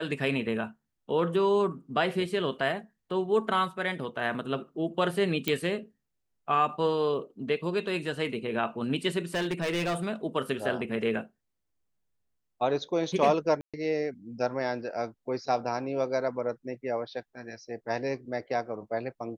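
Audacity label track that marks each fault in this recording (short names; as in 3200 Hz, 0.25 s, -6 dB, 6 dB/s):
5.480000	5.480000	pop -12 dBFS
9.340000	10.080000	clipped -25.5 dBFS
13.610000	13.740000	gap 0.126 s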